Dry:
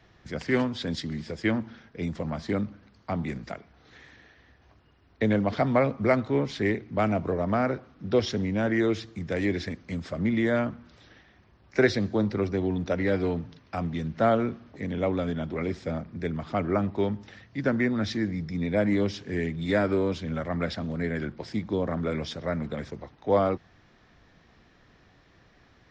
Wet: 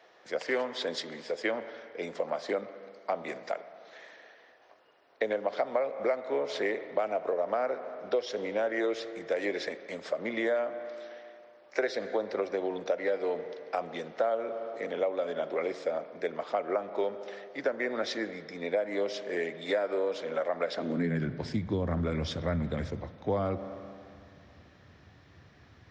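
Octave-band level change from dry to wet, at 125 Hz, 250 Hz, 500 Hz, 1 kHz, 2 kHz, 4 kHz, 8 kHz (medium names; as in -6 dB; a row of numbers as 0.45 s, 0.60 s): -9.0 dB, -10.0 dB, -2.0 dB, -3.5 dB, -3.5 dB, -2.0 dB, no reading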